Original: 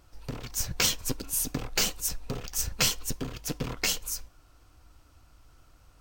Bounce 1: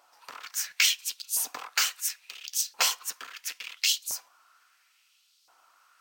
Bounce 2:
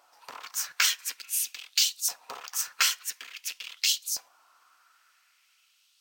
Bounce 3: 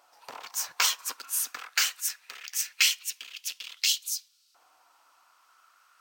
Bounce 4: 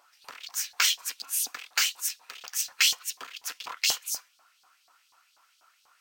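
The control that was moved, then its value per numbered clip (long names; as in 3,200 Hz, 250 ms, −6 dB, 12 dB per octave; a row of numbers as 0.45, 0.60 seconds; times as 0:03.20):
auto-filter high-pass, speed: 0.73, 0.48, 0.22, 4.1 Hertz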